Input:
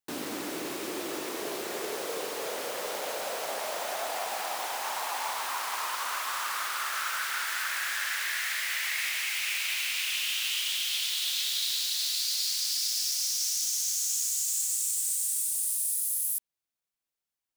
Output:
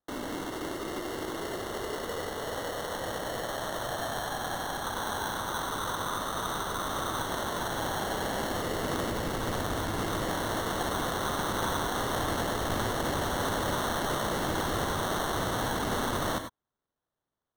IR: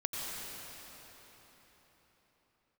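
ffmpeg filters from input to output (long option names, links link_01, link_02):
-filter_complex "[0:a]acrusher=samples=18:mix=1:aa=0.000001,aeval=exprs='(mod(12.6*val(0)+1,2)-1)/12.6':channel_layout=same[link_01];[1:a]atrim=start_sample=2205,afade=type=out:start_time=0.15:duration=0.01,atrim=end_sample=7056,asetrate=41895,aresample=44100[link_02];[link_01][link_02]afir=irnorm=-1:irlink=0"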